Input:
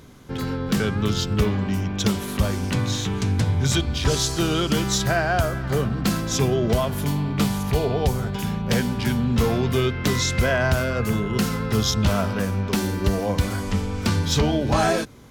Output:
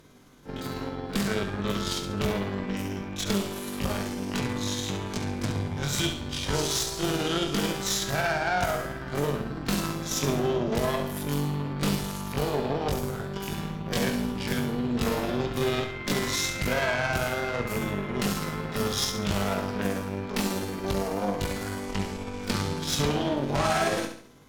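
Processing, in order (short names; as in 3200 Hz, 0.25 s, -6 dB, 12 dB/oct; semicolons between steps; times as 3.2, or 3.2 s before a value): bell 75 Hz -9.5 dB 1.3 oct; added harmonics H 6 -15 dB, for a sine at -9 dBFS; granular stretch 1.6×, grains 0.11 s; flutter echo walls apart 11.9 m, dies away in 0.53 s; gain -5 dB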